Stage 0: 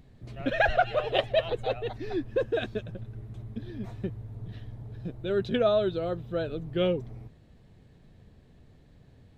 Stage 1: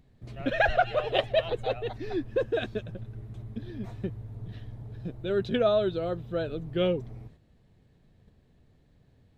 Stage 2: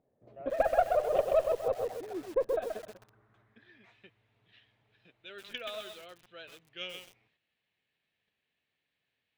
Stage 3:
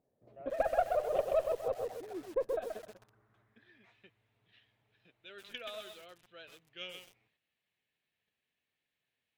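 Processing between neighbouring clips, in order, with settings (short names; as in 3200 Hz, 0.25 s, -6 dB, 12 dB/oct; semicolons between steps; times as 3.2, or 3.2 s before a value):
gate -51 dBFS, range -6 dB
band-pass sweep 570 Hz -> 2600 Hz, 2.35–3.99; added harmonics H 4 -22 dB, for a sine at -15 dBFS; lo-fi delay 0.129 s, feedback 35%, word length 8-bit, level -4 dB
gain -3.5 dB; MP3 80 kbps 44100 Hz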